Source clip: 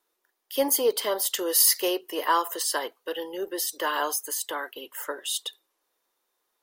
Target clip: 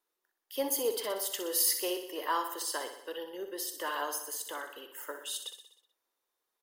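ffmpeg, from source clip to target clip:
ffmpeg -i in.wav -af "aecho=1:1:62|124|186|248|310|372|434:0.355|0.209|0.124|0.0729|0.043|0.0254|0.015,volume=-8.5dB" out.wav

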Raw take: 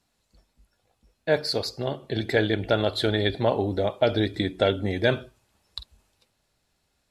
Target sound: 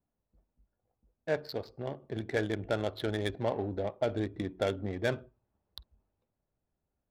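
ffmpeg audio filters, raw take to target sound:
ffmpeg -i in.wav -filter_complex "[0:a]asettb=1/sr,asplit=3[link_01][link_02][link_03];[link_01]atrim=end=3.824[link_04];[link_02]atrim=start=3.82:end=4.49,asetpts=PTS-STARTPTS,afade=type=in:duration=0.004:curve=qsin,afade=type=out:start_time=0.666:duration=0.004:curve=qsin,highshelf=frequency=2100:gain=-4.5[link_05];[link_03]atrim=start=4.486[link_06];[link_04][link_05]acrossfade=duration=0.004:curve1=hsin:curve2=qsin[link_07];[link_07][link_06]acrossfade=duration=0.004:curve1=qsin:curve2=hsin,adynamicsmooth=sensitivity=2:basefreq=1000,volume=-8.5dB" out.wav

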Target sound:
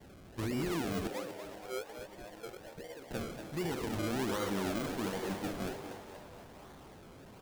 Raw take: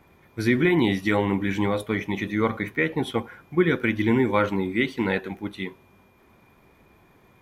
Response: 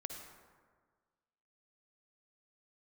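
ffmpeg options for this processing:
-filter_complex "[0:a]aeval=exprs='val(0)+0.5*0.0447*sgn(val(0))':channel_layout=same,agate=range=-33dB:threshold=-26dB:ratio=3:detection=peak,alimiter=limit=-18.5dB:level=0:latency=1:release=37,asettb=1/sr,asplit=3[link_01][link_02][link_03];[link_01]atrim=end=1.074[link_04];[link_02]atrim=start=1.07:end=3.11,asetpts=PTS-STARTPTS,afade=type=in:duration=0.004:curve=qsin,afade=type=out:start_time=2.036:duration=0.004:curve=qsin,asplit=3[link_05][link_06][link_07];[link_05]bandpass=frequency=530:width_type=q:width=8,volume=0dB[link_08];[link_06]bandpass=frequency=1840:width_type=q:width=8,volume=-6dB[link_09];[link_07]bandpass=frequency=2480:width_type=q:width=8,volume=-9dB[link_10];[link_08][link_09][link_10]amix=inputs=3:normalize=0[link_11];[link_03]atrim=start=3.106[link_12];[link_04][link_11]acrossfade=duration=0.004:curve1=hsin:curve2=qsin[link_13];[link_13][link_12]acrossfade=duration=0.004:curve1=qsin:curve2=hsin,acrusher=samples=33:mix=1:aa=0.000001:lfo=1:lforange=33:lforate=1.3,asplit=8[link_14][link_15][link_16][link_17][link_18][link_19][link_20][link_21];[link_15]adelay=237,afreqshift=100,volume=-9dB[link_22];[link_16]adelay=474,afreqshift=200,volume=-13.6dB[link_23];[link_17]adelay=711,afreqshift=300,volume=-18.2dB[link_24];[link_18]adelay=948,afreqshift=400,volume=-22.7dB[link_25];[link_19]adelay=1185,afreqshift=500,volume=-27.3dB[link_26];[link_20]adelay=1422,afreqshift=600,volume=-31.9dB[link_27];[link_21]adelay=1659,afreqshift=700,volume=-36.5dB[link_28];[link_14][link_22][link_23][link_24][link_25][link_26][link_27][link_28]amix=inputs=8:normalize=0,volume=-9dB"

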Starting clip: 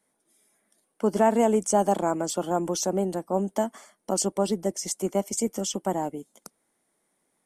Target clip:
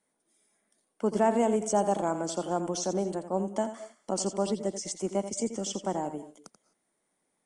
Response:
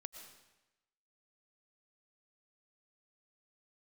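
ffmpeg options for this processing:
-filter_complex "[0:a]acrossover=split=8700[link_01][link_02];[link_02]acompressor=threshold=-45dB:ratio=4:attack=1:release=60[link_03];[link_01][link_03]amix=inputs=2:normalize=0,asplit=2[link_04][link_05];[1:a]atrim=start_sample=2205,afade=type=out:start_time=0.23:duration=0.01,atrim=end_sample=10584,adelay=85[link_06];[link_05][link_06]afir=irnorm=-1:irlink=0,volume=-5.5dB[link_07];[link_04][link_07]amix=inputs=2:normalize=0,aresample=22050,aresample=44100,volume=-4dB"

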